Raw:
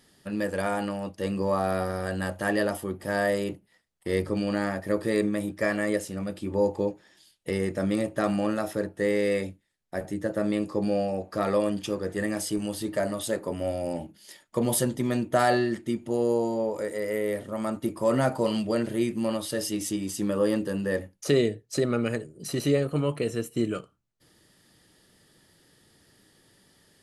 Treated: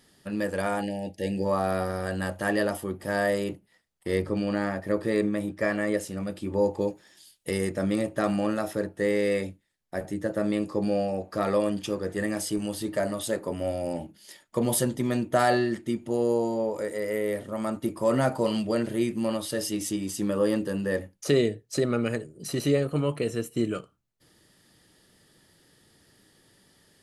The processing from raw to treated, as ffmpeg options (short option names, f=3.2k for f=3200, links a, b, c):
-filter_complex "[0:a]asplit=3[a][b][c];[a]afade=t=out:st=0.81:d=0.02[d];[b]asuperstop=centerf=1200:order=20:qfactor=1.6,afade=t=in:st=0.81:d=0.02,afade=t=out:st=1.44:d=0.02[e];[c]afade=t=in:st=1.44:d=0.02[f];[d][e][f]amix=inputs=3:normalize=0,asettb=1/sr,asplit=3[g][h][i];[g]atrim=end=4.174[j];[h]atrim=start=4.17:end=5.98,asetpts=PTS-STARTPTS,afade=t=in:d=0.004:c=qsin,afade=t=out:st=1.806:d=0.004:c=qsin,highshelf=f=4.9k:g=-6.5[k];[i]atrim=start=5.976[l];[j][k]acrossfade=d=0.004:c1=hsin:c2=qsin[m];[m][l]acrossfade=d=0.004:c1=qsin:c2=hsin,asettb=1/sr,asplit=3[n][o][p];[n]atrim=end=6.814[q];[o]atrim=start=6.81:end=7.7,asetpts=PTS-STARTPTS,afade=t=in:d=0.004:c=qsin,afade=t=out:st=0.886:d=0.004:c=qsin,aemphasis=mode=production:type=cd[r];[p]atrim=start=7.696[s];[q][r]acrossfade=d=0.004:c1=hsin:c2=qsin[t];[t][s]acrossfade=d=0.004:c1=qsin:c2=hsin"